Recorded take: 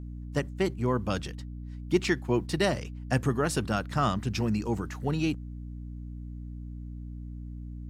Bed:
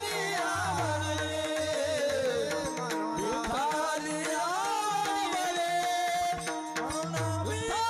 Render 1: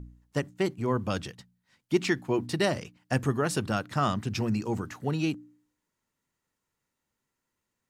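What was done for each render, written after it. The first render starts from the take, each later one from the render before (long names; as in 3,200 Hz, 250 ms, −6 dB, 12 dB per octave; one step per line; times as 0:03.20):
hum removal 60 Hz, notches 5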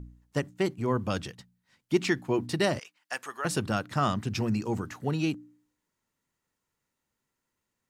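0:02.79–0:03.45: high-pass filter 1,000 Hz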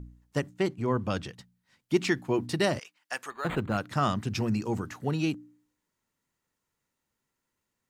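0:00.56–0:01.32: high-shelf EQ 11,000 Hz → 7,000 Hz −9.5 dB
0:03.30–0:03.78: linearly interpolated sample-rate reduction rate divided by 8×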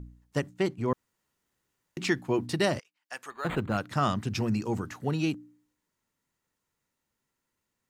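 0:00.93–0:01.97: fill with room tone
0:02.81–0:03.49: fade in, from −21.5 dB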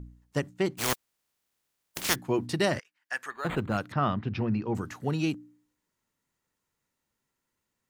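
0:00.77–0:02.14: compressing power law on the bin magnitudes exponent 0.23
0:02.71–0:03.36: parametric band 1,700 Hz +9.5 dB 0.63 octaves
0:03.92–0:04.75: Bessel low-pass filter 2,600 Hz, order 6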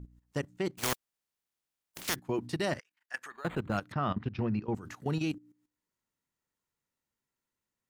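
output level in coarse steps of 15 dB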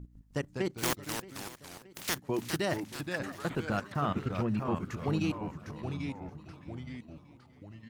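delay with pitch and tempo change per echo 154 ms, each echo −2 semitones, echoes 3, each echo −6 dB
repeating echo 624 ms, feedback 54%, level −18.5 dB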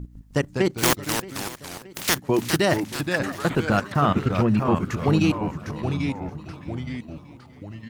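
level +11 dB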